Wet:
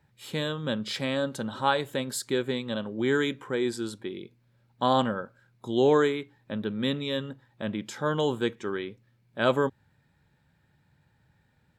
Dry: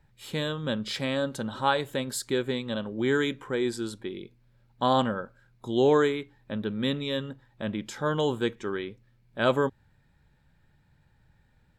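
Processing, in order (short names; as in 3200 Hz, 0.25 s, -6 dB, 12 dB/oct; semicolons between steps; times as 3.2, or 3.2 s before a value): HPF 87 Hz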